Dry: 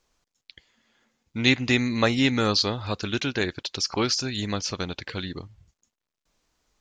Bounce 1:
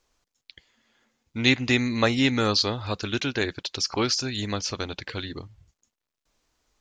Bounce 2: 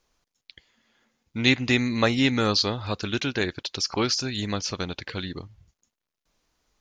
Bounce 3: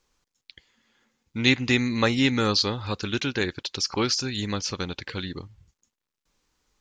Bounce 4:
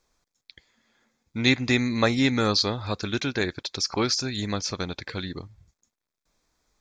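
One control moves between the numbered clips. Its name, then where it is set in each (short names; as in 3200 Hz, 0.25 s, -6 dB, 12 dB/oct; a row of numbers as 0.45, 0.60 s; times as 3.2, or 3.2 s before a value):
notch, frequency: 180, 7900, 660, 2900 Hz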